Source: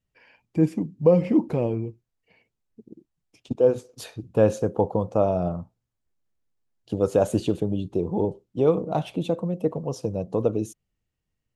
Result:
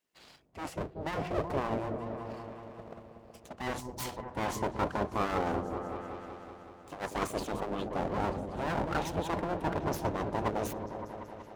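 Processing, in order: full-wave rectifier; reverse; compression 5:1, threshold -27 dBFS, peak gain reduction 14 dB; reverse; delay with an opening low-pass 188 ms, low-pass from 400 Hz, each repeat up 1 oct, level -6 dB; spectral gate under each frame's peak -20 dB weak; trim +4.5 dB

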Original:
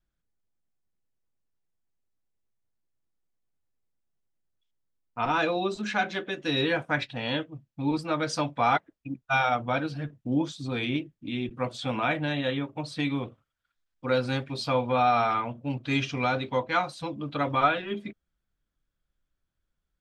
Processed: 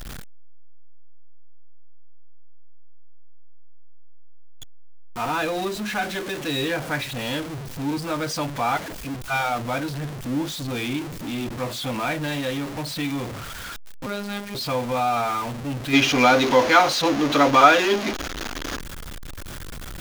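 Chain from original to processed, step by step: jump at every zero crossing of -26 dBFS; 14.06–14.55 s: robot voice 203 Hz; 15.93–18.80 s: time-frequency box 220–7000 Hz +10 dB; trim -2 dB

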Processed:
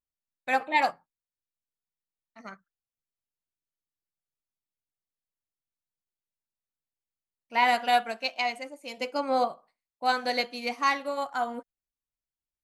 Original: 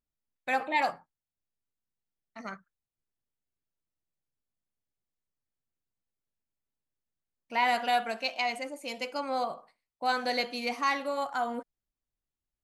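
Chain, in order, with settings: 8.97–9.48 s: peaking EQ 360 Hz +5 dB 2.2 oct; upward expansion 1.5:1, over -48 dBFS; trim +4.5 dB

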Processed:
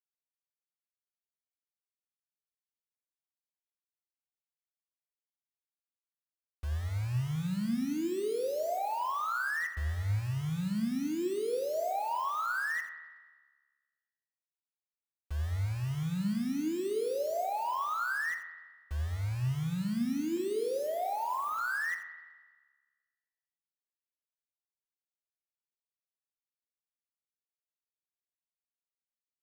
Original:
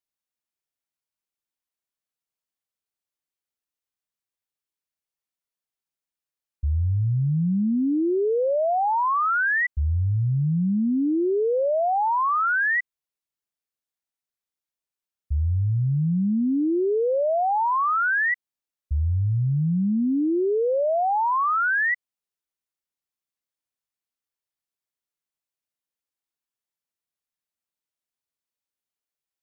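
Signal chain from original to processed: local Wiener filter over 9 samples; 20.37–21.59 s: low-pass 1.5 kHz 12 dB/octave; word length cut 6-bit, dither none; flange 0.16 Hz, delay 7 ms, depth 3.8 ms, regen +84%; on a send: delay 83 ms -11 dB; on the sum: spring tank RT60 1.4 s, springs 39 ms, chirp 65 ms, DRR 8 dB; trim -7 dB

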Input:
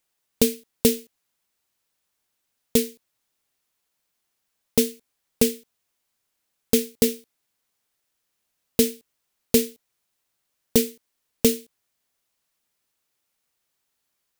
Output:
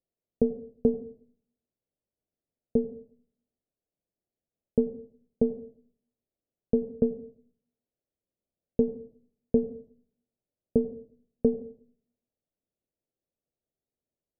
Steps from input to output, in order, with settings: tracing distortion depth 0.26 ms; steep low-pass 650 Hz 36 dB/octave; reverberation RT60 0.55 s, pre-delay 80 ms, DRR 15 dB; trim -3.5 dB

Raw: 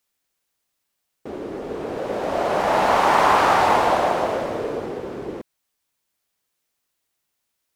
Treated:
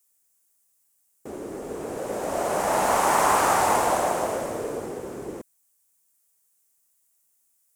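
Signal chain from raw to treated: resonant high shelf 5.7 kHz +13 dB, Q 1.5; trim -4 dB

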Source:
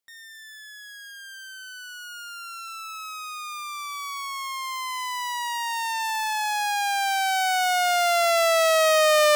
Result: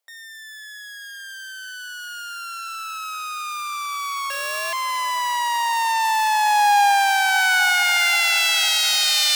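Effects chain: 4.30–4.73 s: sorted samples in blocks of 16 samples; high-pass sweep 600 Hz -> 3.8 kHz, 6.40–8.85 s; echo that smears into a reverb 535 ms, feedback 66%, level -14 dB; trim +4 dB

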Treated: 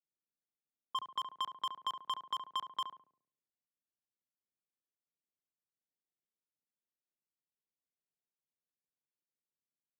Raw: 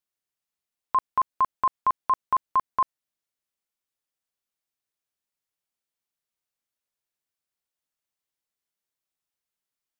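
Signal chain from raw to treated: median filter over 25 samples; peak limiter -30 dBFS, peak gain reduction 9.5 dB; high-pass 120 Hz 24 dB/octave; resonant high shelf 1.6 kHz +10 dB, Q 1.5; level-controlled noise filter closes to 540 Hz, open at -34 dBFS; compression, threshold -33 dBFS, peak gain reduction 5.5 dB; filtered feedback delay 70 ms, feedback 56%, low-pass 950 Hz, level -5.5 dB; dynamic bell 980 Hz, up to +7 dB, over -52 dBFS, Q 1.4; trim -3.5 dB

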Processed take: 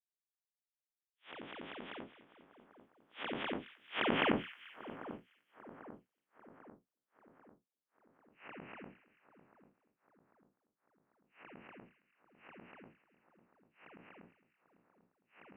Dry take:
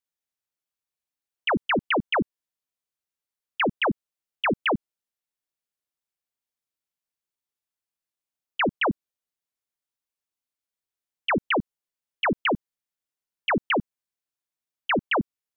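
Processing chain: spectral blur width 130 ms; Doppler pass-by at 4.37 s, 34 m/s, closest 13 m; two-band feedback delay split 1.5 kHz, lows 794 ms, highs 218 ms, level -14 dB; trim +7 dB

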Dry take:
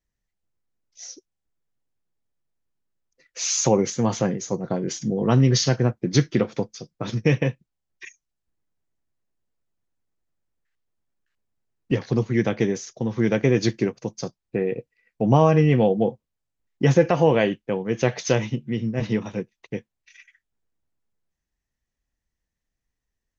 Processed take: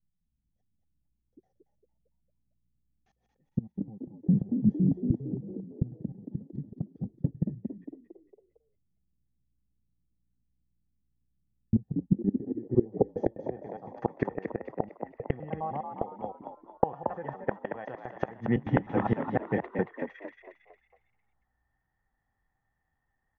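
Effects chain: slices played last to first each 102 ms, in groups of 5; small resonant body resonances 780/1800/3300 Hz, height 17 dB, ringing for 50 ms; inverted gate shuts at -13 dBFS, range -26 dB; low-pass sweep 180 Hz -> 1.3 kHz, 12.00–14.05 s; on a send: frequency-shifting echo 227 ms, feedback 42%, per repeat +60 Hz, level -6.5 dB

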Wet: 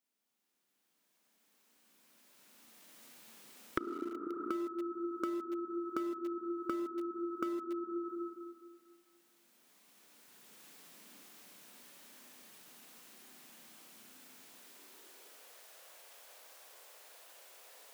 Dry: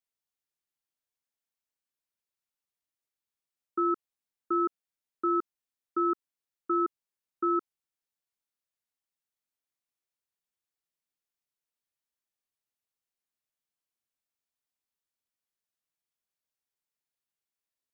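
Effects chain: recorder AGC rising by 9.8 dB/s; spring tank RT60 1.8 s, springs 31/35/49 ms, chirp 35 ms, DRR 1 dB; in parallel at -9 dB: small samples zeroed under -24.5 dBFS; on the sum: high-pass sweep 220 Hz -> 550 Hz, 14.44–15.62 s; compression 20:1, threshold -38 dBFS, peak gain reduction 34 dB; trim +3.5 dB

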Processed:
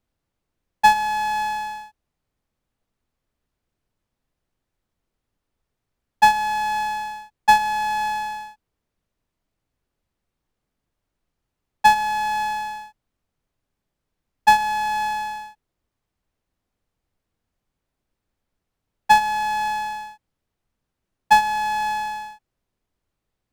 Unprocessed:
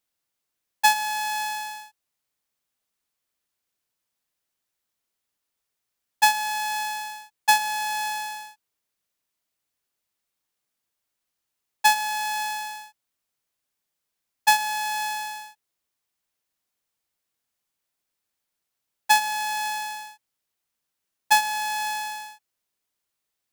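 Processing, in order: tilt EQ -4 dB/octave; trim +5 dB

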